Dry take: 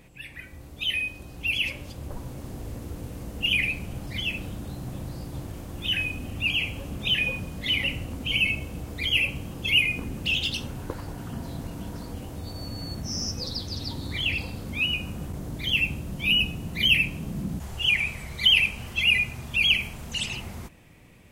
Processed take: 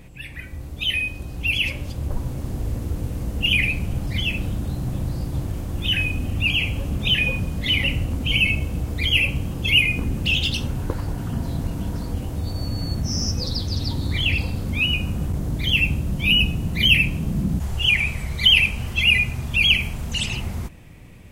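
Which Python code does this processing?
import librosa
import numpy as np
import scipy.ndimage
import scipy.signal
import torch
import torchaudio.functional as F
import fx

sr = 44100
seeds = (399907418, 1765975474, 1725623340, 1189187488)

y = fx.low_shelf(x, sr, hz=160.0, db=9.0)
y = y * 10.0 ** (4.0 / 20.0)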